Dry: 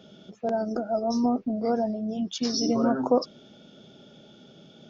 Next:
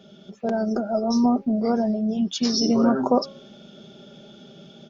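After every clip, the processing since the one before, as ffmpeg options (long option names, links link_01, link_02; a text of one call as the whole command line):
ffmpeg -i in.wav -af "aecho=1:1:5.1:0.43,bandreject=frequency=273.3:width_type=h:width=4,bandreject=frequency=546.6:width_type=h:width=4,bandreject=frequency=819.9:width_type=h:width=4,bandreject=frequency=1093.2:width_type=h:width=4,bandreject=frequency=1366.5:width_type=h:width=4,bandreject=frequency=1639.8:width_type=h:width=4,bandreject=frequency=1913.1:width_type=h:width=4,bandreject=frequency=2186.4:width_type=h:width=4,bandreject=frequency=2459.7:width_type=h:width=4,bandreject=frequency=2733:width_type=h:width=4,bandreject=frequency=3006.3:width_type=h:width=4,bandreject=frequency=3279.6:width_type=h:width=4,bandreject=frequency=3552.9:width_type=h:width=4,bandreject=frequency=3826.2:width_type=h:width=4,bandreject=frequency=4099.5:width_type=h:width=4,dynaudnorm=framelen=230:gausssize=3:maxgain=4dB" out.wav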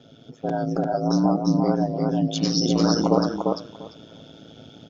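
ffmpeg -i in.wav -af "aeval=exprs='val(0)*sin(2*PI*55*n/s)':channel_layout=same,aecho=1:1:345|690|1035:0.708|0.106|0.0159,volume=1.5dB" out.wav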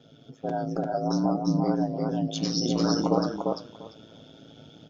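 ffmpeg -i in.wav -af "flanger=delay=6.2:depth=3:regen=75:speed=0.63:shape=triangular" out.wav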